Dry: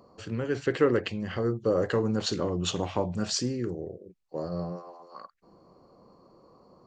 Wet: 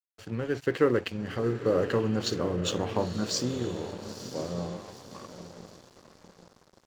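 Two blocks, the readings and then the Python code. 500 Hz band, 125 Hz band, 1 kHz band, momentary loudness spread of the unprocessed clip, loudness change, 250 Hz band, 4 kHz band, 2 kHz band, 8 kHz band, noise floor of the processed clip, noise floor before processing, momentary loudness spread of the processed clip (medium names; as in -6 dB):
0.0 dB, -0.5 dB, 0.0 dB, 17 LU, -0.5 dB, -0.5 dB, -0.5 dB, 0.0 dB, -0.5 dB, -63 dBFS, -61 dBFS, 19 LU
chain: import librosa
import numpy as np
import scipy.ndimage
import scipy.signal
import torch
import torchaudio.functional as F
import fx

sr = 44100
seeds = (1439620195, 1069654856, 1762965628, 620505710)

y = fx.echo_diffused(x, sr, ms=936, feedback_pct=53, wet_db=-10.0)
y = np.sign(y) * np.maximum(np.abs(y) - 10.0 ** (-46.0 / 20.0), 0.0)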